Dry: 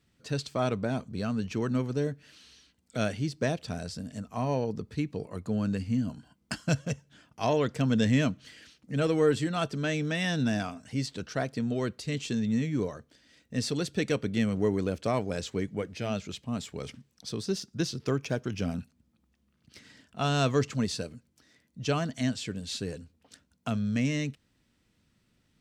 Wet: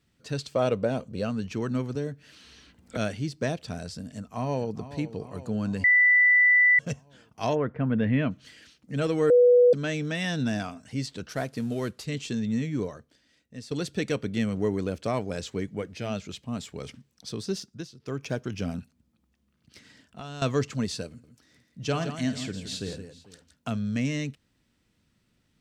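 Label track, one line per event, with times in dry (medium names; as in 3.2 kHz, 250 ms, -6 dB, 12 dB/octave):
0.520000	1.300000	small resonant body resonances 520/2800 Hz, height 11 dB, ringing for 25 ms
1.950000	2.970000	three bands compressed up and down depth 70%
4.100000	4.750000	echo throw 430 ms, feedback 65%, level -13.5 dB
5.840000	6.790000	bleep 1.98 kHz -15.5 dBFS
7.540000	8.300000	low-pass 1.7 kHz -> 2.9 kHz 24 dB/octave
9.300000	9.730000	bleep 490 Hz -13.5 dBFS
11.290000	12.050000	CVSD coder 64 kbps
12.810000	13.710000	fade out, to -14.5 dB
17.590000	18.280000	dip -14 dB, fades 0.29 s
18.790000	20.420000	compression, threshold -36 dBFS
21.070000	23.700000	multi-tap echo 51/166/446 ms -12/-9/-20 dB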